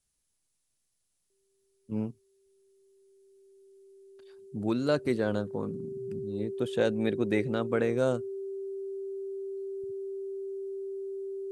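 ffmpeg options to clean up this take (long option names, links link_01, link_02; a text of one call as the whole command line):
ffmpeg -i in.wav -af "bandreject=frequency=390:width=30,agate=range=-21dB:threshold=-69dB" out.wav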